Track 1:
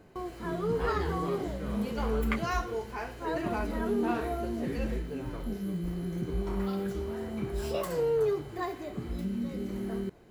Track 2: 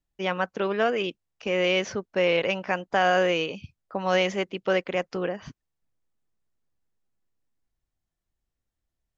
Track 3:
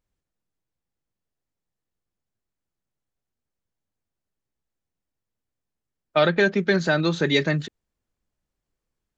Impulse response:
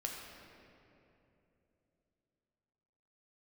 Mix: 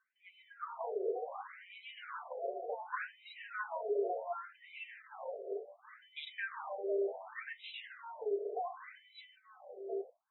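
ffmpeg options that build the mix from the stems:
-filter_complex "[0:a]highpass=180,dynaudnorm=framelen=170:gausssize=9:maxgain=6dB,volume=1.5dB,asplit=2[link_01][link_02];[link_02]volume=-22.5dB[link_03];[1:a]lowpass=1100,acompressor=threshold=-32dB:ratio=3,volume=2dB[link_04];[2:a]highpass=550,volume=-19dB,asplit=2[link_05][link_06];[link_06]volume=-4.5dB[link_07];[link_01][link_04]amix=inputs=2:normalize=0,tremolo=f=2.7:d=0.64,acompressor=threshold=-29dB:ratio=6,volume=0dB[link_08];[3:a]atrim=start_sample=2205[link_09];[link_03][link_07]amix=inputs=2:normalize=0[link_10];[link_10][link_09]afir=irnorm=-1:irlink=0[link_11];[link_05][link_08][link_11]amix=inputs=3:normalize=0,afftdn=noise_reduction=17:noise_floor=-50,afftfilt=real='re*between(b*sr/1024,490*pow(2900/490,0.5+0.5*sin(2*PI*0.68*pts/sr))/1.41,490*pow(2900/490,0.5+0.5*sin(2*PI*0.68*pts/sr))*1.41)':imag='im*between(b*sr/1024,490*pow(2900/490,0.5+0.5*sin(2*PI*0.68*pts/sr))/1.41,490*pow(2900/490,0.5+0.5*sin(2*PI*0.68*pts/sr))*1.41)':win_size=1024:overlap=0.75"

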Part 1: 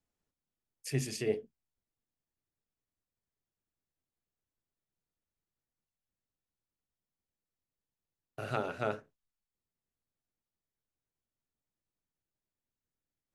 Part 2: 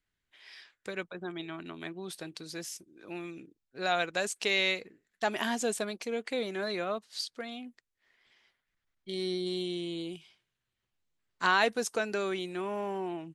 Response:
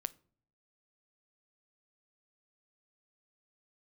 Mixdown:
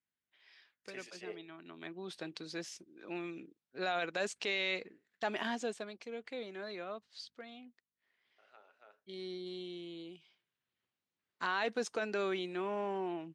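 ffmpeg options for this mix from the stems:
-filter_complex "[0:a]highpass=650,aeval=exprs='val(0)+0.000282*(sin(2*PI*50*n/s)+sin(2*PI*2*50*n/s)/2+sin(2*PI*3*50*n/s)/3+sin(2*PI*4*50*n/s)/4+sin(2*PI*5*50*n/s)/5)':channel_layout=same,volume=-6.5dB[link_01];[1:a]volume=7dB,afade=type=in:start_time=1.61:duration=0.66:silence=0.316228,afade=type=out:start_time=5.13:duration=0.71:silence=0.354813,afade=type=in:start_time=10.15:duration=0.63:silence=0.421697,asplit=2[link_02][link_03];[link_03]apad=whole_len=588302[link_04];[link_01][link_04]sidechaingate=range=-18dB:threshold=-54dB:ratio=16:detection=peak[link_05];[link_05][link_02]amix=inputs=2:normalize=0,highpass=170,lowpass=4900,alimiter=level_in=0.5dB:limit=-24dB:level=0:latency=1:release=20,volume=-0.5dB"

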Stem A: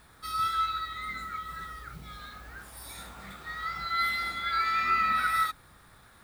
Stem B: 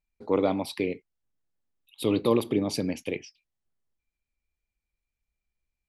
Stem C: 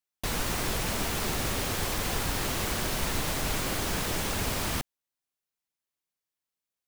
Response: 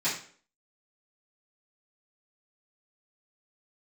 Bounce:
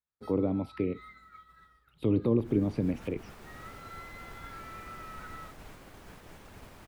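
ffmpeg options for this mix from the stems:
-filter_complex "[0:a]highshelf=frequency=5000:gain=-7.5,acompressor=threshold=-33dB:ratio=6,volume=-10dB[link_01];[1:a]equalizer=frequency=89:width=0.87:gain=6.5,volume=-1dB[link_02];[2:a]adelay=2150,volume=-16dB[link_03];[link_01][link_02][link_03]amix=inputs=3:normalize=0,acrossover=split=2500[link_04][link_05];[link_05]acompressor=threshold=-57dB:ratio=4:attack=1:release=60[link_06];[link_04][link_06]amix=inputs=2:normalize=0,agate=range=-33dB:threshold=-43dB:ratio=3:detection=peak,acrossover=split=420[link_07][link_08];[link_08]acompressor=threshold=-40dB:ratio=6[link_09];[link_07][link_09]amix=inputs=2:normalize=0"

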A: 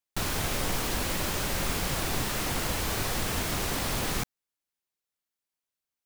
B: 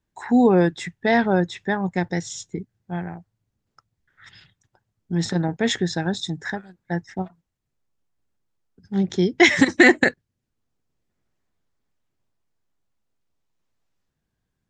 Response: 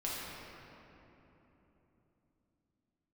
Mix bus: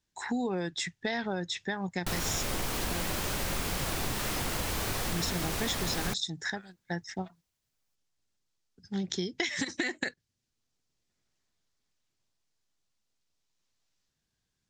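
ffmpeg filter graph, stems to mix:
-filter_complex "[0:a]adelay=1900,volume=2.5dB[link_01];[1:a]equalizer=frequency=5300:width=0.5:gain=13.5,acompressor=threshold=-16dB:ratio=6,volume=-6.5dB[link_02];[link_01][link_02]amix=inputs=2:normalize=0,acompressor=threshold=-31dB:ratio=2.5"

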